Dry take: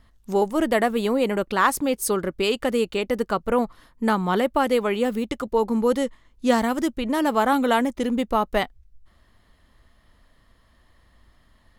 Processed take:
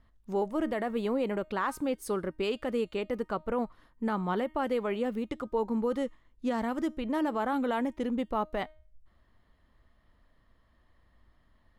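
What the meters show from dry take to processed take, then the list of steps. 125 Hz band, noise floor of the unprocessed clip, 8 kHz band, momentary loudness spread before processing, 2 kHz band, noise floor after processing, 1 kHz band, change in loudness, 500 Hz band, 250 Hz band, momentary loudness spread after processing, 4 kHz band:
−7.5 dB, −60 dBFS, below −15 dB, 5 LU, −11.5 dB, −67 dBFS, −10.0 dB, −9.0 dB, −9.0 dB, −8.0 dB, 5 LU, −13.0 dB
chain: high-shelf EQ 3,900 Hz −12 dB
tuned comb filter 310 Hz, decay 0.43 s, harmonics all, mix 40%
brickwall limiter −17.5 dBFS, peak gain reduction 7 dB
level −3 dB

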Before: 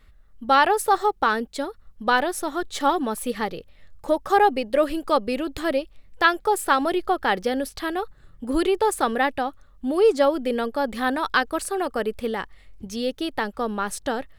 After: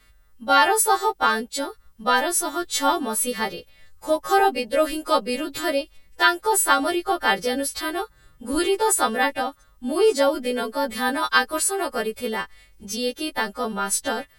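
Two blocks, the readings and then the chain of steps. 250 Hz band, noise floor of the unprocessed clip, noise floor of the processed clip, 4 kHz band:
−1.0 dB, −52 dBFS, −56 dBFS, +5.5 dB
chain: every partial snapped to a pitch grid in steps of 2 semitones

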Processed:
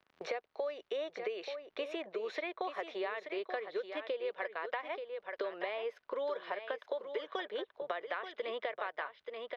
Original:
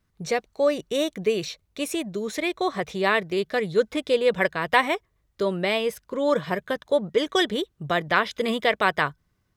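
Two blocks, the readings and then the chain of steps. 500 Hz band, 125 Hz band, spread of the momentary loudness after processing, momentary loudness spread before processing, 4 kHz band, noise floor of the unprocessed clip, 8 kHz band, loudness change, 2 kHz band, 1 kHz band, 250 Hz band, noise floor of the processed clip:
−13.5 dB, below −35 dB, 4 LU, 7 LU, −17.0 dB, −71 dBFS, below −25 dB, −15.0 dB, −16.0 dB, −14.5 dB, −20.5 dB, −77 dBFS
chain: high-pass filter 460 Hz 24 dB per octave
noise gate with hold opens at −47 dBFS
high-shelf EQ 6,600 Hz −8 dB
downward compressor 6 to 1, threshold −32 dBFS, peak gain reduction 17 dB
surface crackle 110 per second −59 dBFS
high-frequency loss of the air 280 metres
on a send: single-tap delay 881 ms −10 dB
on the sum: multiband upward and downward compressor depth 70%
level −2 dB

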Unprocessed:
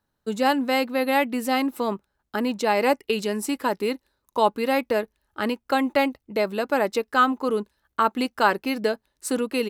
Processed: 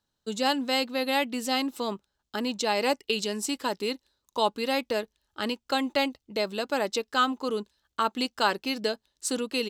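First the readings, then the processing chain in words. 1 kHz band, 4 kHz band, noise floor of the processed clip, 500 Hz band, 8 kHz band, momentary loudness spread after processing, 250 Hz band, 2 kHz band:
−5.5 dB, +3.0 dB, −82 dBFS, −5.5 dB, +1.5 dB, 8 LU, −5.5 dB, −4.5 dB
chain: flat-topped bell 4,800 Hz +9.5 dB
level −5.5 dB

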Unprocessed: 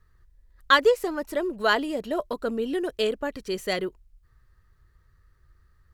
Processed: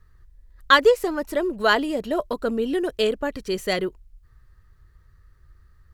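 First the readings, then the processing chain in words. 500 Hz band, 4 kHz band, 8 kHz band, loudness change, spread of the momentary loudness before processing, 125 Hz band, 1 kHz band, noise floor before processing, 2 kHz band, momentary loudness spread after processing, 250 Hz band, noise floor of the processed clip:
+3.5 dB, +3.0 dB, +3.0 dB, +3.5 dB, 11 LU, +5.0 dB, +3.0 dB, −62 dBFS, +3.0 dB, 11 LU, +4.0 dB, −56 dBFS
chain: low-shelf EQ 150 Hz +4 dB
level +3 dB

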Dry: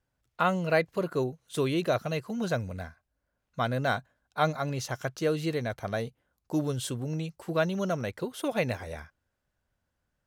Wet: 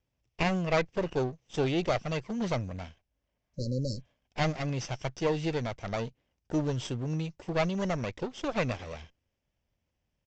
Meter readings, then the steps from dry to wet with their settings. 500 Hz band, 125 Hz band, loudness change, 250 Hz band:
−2.0 dB, +0.5 dB, −1.5 dB, −0.5 dB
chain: lower of the sound and its delayed copy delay 0.37 ms
healed spectral selection 0:03.43–0:04.06, 600–3,900 Hz both
downsampling to 16,000 Hz

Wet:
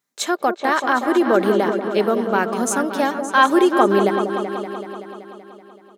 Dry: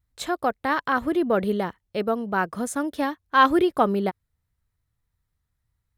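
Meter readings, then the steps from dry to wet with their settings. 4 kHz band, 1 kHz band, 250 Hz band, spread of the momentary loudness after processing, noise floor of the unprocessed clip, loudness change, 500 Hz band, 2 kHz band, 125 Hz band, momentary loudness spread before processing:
+6.0 dB, +5.0 dB, +5.5 dB, 15 LU, −79 dBFS, +5.5 dB, +7.5 dB, +5.5 dB, can't be measured, 10 LU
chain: high-pass filter 230 Hz 24 dB per octave
parametric band 6,400 Hz +7 dB 0.44 octaves
comb filter 5 ms, depth 34%
in parallel at +2.5 dB: brickwall limiter −16 dBFS, peak gain reduction 11 dB
on the sum: echo whose low-pass opens from repeat to repeat 190 ms, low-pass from 750 Hz, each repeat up 2 octaves, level −6 dB
level −1 dB

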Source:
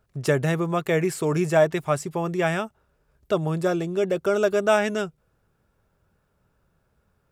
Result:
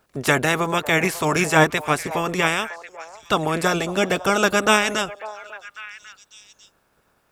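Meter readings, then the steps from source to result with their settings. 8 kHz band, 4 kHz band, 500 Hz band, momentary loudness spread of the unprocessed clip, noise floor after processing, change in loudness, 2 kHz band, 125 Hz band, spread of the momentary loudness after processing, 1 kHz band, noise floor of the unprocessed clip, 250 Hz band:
+10.0 dB, +12.0 dB, −0.5 dB, 7 LU, −65 dBFS, +3.5 dB, +9.5 dB, −0.5 dB, 19 LU, +7.5 dB, −70 dBFS, +2.0 dB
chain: ceiling on every frequency bin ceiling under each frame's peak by 19 dB
echo through a band-pass that steps 547 ms, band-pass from 730 Hz, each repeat 1.4 octaves, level −12 dB
level +3 dB

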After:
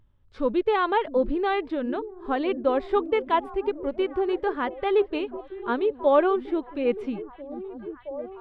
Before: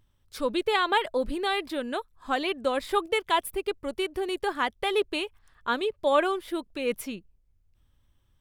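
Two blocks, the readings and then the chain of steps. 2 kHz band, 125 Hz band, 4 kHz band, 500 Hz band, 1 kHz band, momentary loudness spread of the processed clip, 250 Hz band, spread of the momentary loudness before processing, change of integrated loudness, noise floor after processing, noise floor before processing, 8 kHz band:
−3.0 dB, can't be measured, −8.5 dB, +4.5 dB, +1.5 dB, 13 LU, +5.5 dB, 10 LU, +2.5 dB, −52 dBFS, −67 dBFS, below −25 dB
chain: harmonic and percussive parts rebalanced percussive −5 dB
head-to-tape spacing loss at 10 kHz 36 dB
echo through a band-pass that steps 671 ms, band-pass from 200 Hz, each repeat 0.7 octaves, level −9 dB
level +6.5 dB

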